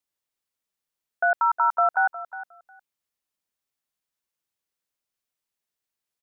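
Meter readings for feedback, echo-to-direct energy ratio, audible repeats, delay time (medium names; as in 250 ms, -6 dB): 16%, -15.0 dB, 2, 360 ms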